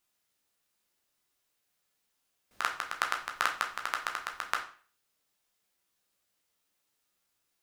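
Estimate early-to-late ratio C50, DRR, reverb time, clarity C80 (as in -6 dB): 9.5 dB, 1.5 dB, 0.45 s, 14.0 dB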